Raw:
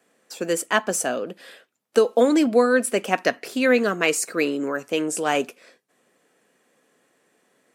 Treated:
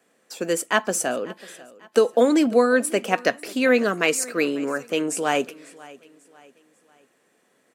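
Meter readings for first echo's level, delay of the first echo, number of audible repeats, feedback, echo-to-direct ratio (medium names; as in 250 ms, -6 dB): -21.0 dB, 544 ms, 2, 40%, -20.5 dB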